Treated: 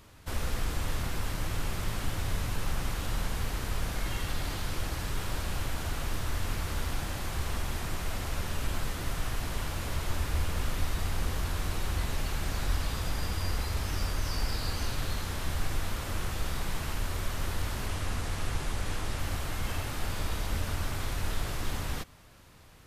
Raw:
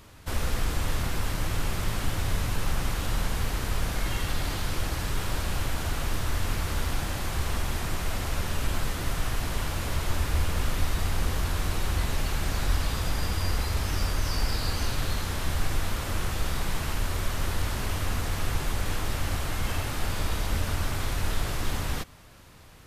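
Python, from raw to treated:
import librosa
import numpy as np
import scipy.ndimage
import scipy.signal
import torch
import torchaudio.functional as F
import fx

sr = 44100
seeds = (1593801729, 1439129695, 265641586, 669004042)

y = fx.lowpass(x, sr, hz=12000.0, slope=24, at=(17.88, 19.19))
y = F.gain(torch.from_numpy(y), -4.0).numpy()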